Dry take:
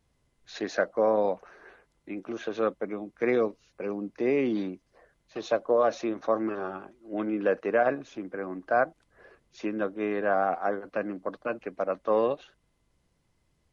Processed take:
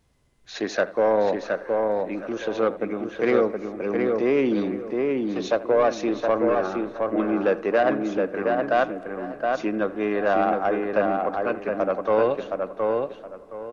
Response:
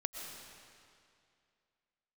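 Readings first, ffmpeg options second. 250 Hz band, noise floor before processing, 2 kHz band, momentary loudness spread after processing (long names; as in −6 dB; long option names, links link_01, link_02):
+6.5 dB, −72 dBFS, +5.0 dB, 8 LU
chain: -filter_complex "[0:a]asoftclip=type=tanh:threshold=-17.5dB,asplit=2[link_01][link_02];[link_02]adelay=719,lowpass=frequency=2500:poles=1,volume=-3dB,asplit=2[link_03][link_04];[link_04]adelay=719,lowpass=frequency=2500:poles=1,volume=0.26,asplit=2[link_05][link_06];[link_06]adelay=719,lowpass=frequency=2500:poles=1,volume=0.26,asplit=2[link_07][link_08];[link_08]adelay=719,lowpass=frequency=2500:poles=1,volume=0.26[link_09];[link_01][link_03][link_05][link_07][link_09]amix=inputs=5:normalize=0,asplit=2[link_10][link_11];[1:a]atrim=start_sample=2205,lowpass=3000,adelay=80[link_12];[link_11][link_12]afir=irnorm=-1:irlink=0,volume=-16.5dB[link_13];[link_10][link_13]amix=inputs=2:normalize=0,volume=5.5dB"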